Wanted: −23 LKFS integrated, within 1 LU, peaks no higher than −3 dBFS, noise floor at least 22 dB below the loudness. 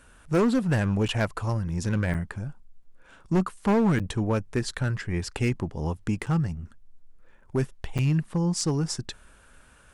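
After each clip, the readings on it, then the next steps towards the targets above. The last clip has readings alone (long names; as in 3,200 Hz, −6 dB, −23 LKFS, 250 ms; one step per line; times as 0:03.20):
share of clipped samples 1.6%; peaks flattened at −17.5 dBFS; number of dropouts 5; longest dropout 7.4 ms; integrated loudness −27.0 LKFS; sample peak −17.5 dBFS; target loudness −23.0 LKFS
→ clipped peaks rebuilt −17.5 dBFS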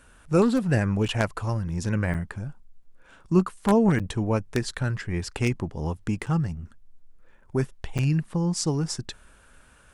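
share of clipped samples 0.0%; number of dropouts 5; longest dropout 7.4 ms
→ repair the gap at 0:01.08/0:02.14/0:03.99/0:06.26/0:07.98, 7.4 ms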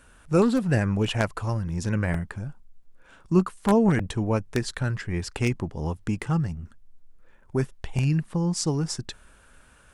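number of dropouts 0; integrated loudness −26.0 LKFS; sample peak −8.5 dBFS; target loudness −23.0 LKFS
→ level +3 dB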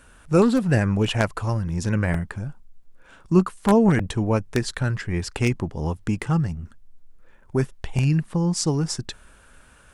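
integrated loudness −23.0 LKFS; sample peak −5.5 dBFS; background noise floor −52 dBFS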